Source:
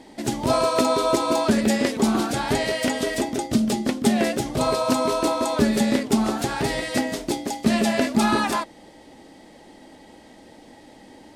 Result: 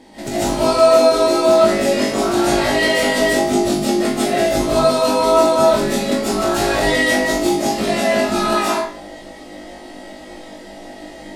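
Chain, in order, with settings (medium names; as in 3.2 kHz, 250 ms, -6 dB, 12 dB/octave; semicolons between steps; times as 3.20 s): compression, threshold -24 dBFS, peak gain reduction 10.5 dB; flutter echo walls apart 3.4 m, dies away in 0.36 s; reverberation RT60 0.50 s, pre-delay 105 ms, DRR -10 dB; trim -1 dB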